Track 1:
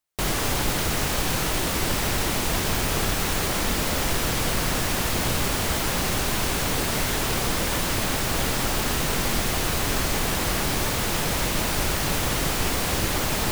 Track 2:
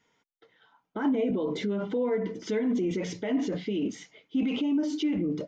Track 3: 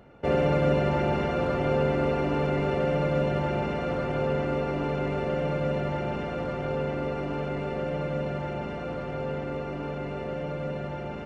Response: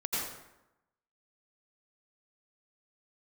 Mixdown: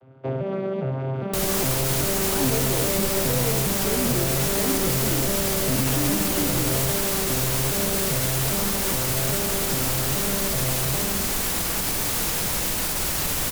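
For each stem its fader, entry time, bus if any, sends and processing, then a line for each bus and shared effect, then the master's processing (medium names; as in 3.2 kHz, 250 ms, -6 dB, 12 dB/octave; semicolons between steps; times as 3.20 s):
-7.0 dB, 1.15 s, send -8 dB, peak limiter -15 dBFS, peak gain reduction 5 dB; treble shelf 5.9 kHz +11.5 dB
-1.5 dB, 1.35 s, no send, none
+2.5 dB, 0.00 s, send -17 dB, vocoder on a broken chord bare fifth, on C3, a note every 405 ms; compression, threshold -27 dBFS, peak gain reduction 7 dB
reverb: on, RT60 0.90 s, pre-delay 78 ms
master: vibrato 1.2 Hz 29 cents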